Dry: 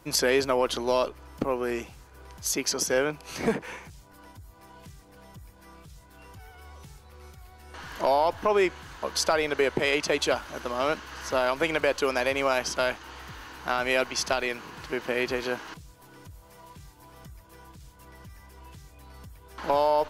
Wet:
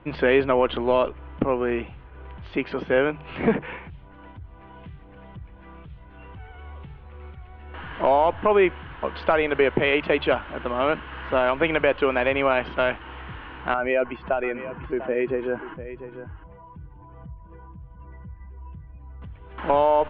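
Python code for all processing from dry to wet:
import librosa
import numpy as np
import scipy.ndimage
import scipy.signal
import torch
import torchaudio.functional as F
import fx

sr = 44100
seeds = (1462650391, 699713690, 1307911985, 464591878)

y = fx.chain(x, sr, fx.spec_expand(power=1.6),
    fx.air_absorb(metres=320.0),
    fx.echo_single(ms=696, db=-13.0), at=(13.74, 19.22))
y = scipy.signal.sosfilt(scipy.signal.butter(8, 3200.0, 'lowpass', fs=sr, output='sos'), y)
y = fx.low_shelf(y, sr, hz=230.0, db=5.5)
y = fx.hum_notches(y, sr, base_hz=50, count=3)
y = F.gain(torch.from_numpy(y), 3.5).numpy()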